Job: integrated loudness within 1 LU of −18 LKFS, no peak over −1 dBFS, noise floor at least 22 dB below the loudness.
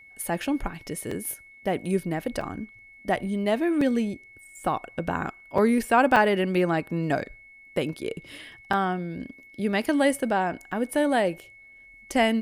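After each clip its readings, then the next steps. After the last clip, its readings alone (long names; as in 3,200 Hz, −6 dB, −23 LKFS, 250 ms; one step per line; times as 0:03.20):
number of dropouts 7; longest dropout 4.1 ms; interfering tone 2,200 Hz; level of the tone −48 dBFS; integrated loudness −26.0 LKFS; sample peak −7.5 dBFS; target loudness −18.0 LKFS
→ repair the gap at 0:01.11/0:02.41/0:03.81/0:05.58/0:06.16/0:08.73/0:10.72, 4.1 ms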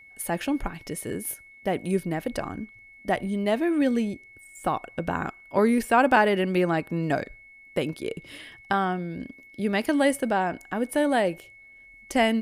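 number of dropouts 0; interfering tone 2,200 Hz; level of the tone −48 dBFS
→ notch filter 2,200 Hz, Q 30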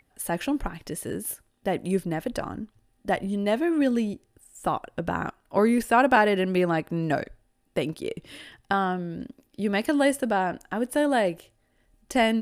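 interfering tone none found; integrated loudness −26.0 LKFS; sample peak −7.5 dBFS; target loudness −18.0 LKFS
→ level +8 dB
brickwall limiter −1 dBFS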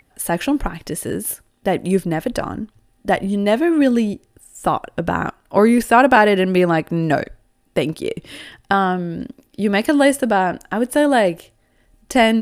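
integrated loudness −18.5 LKFS; sample peak −1.0 dBFS; background noise floor −61 dBFS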